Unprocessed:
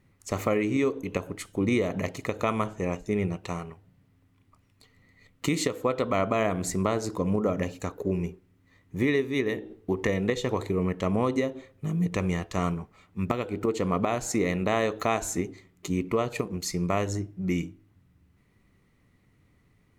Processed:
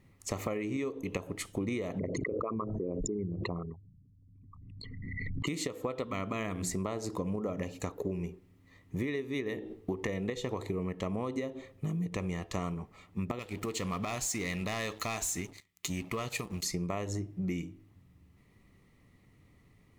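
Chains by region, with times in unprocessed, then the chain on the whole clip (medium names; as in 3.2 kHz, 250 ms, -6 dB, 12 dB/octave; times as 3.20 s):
1.99–5.47 s: resonances exaggerated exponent 3 + swell ahead of each attack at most 24 dB/s
6.03–6.71 s: peaking EQ 650 Hz -9.5 dB 1.1 oct + hum notches 60/120/180/240/300/360/420 Hz
13.39–16.63 s: amplifier tone stack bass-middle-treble 5-5-5 + waveshaping leveller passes 3 + tape noise reduction on one side only encoder only
whole clip: band-stop 1.5 kHz, Q 6.2; compression 6:1, threshold -33 dBFS; trim +1.5 dB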